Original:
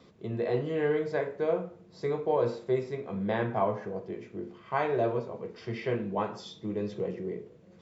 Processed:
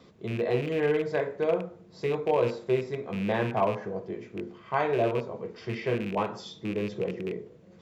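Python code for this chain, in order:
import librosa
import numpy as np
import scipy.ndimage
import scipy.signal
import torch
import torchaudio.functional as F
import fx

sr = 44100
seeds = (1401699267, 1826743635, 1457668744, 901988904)

y = fx.rattle_buzz(x, sr, strikes_db=-35.0, level_db=-31.0)
y = y * librosa.db_to_amplitude(2.0)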